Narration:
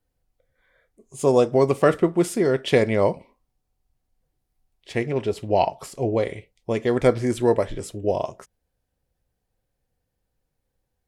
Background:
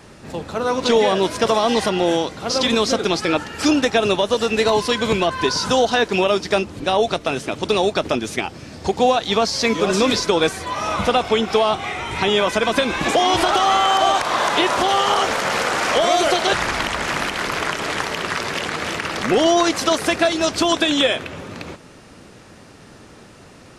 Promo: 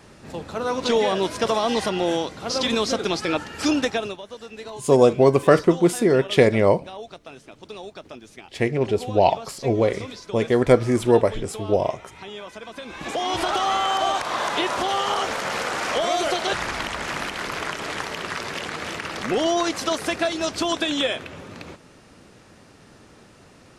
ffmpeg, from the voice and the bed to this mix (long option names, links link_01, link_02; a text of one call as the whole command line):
ffmpeg -i stem1.wav -i stem2.wav -filter_complex "[0:a]adelay=3650,volume=2.5dB[link_01];[1:a]volume=9dB,afade=type=out:start_time=3.84:duration=0.33:silence=0.177828,afade=type=in:start_time=12.78:duration=0.72:silence=0.211349[link_02];[link_01][link_02]amix=inputs=2:normalize=0" out.wav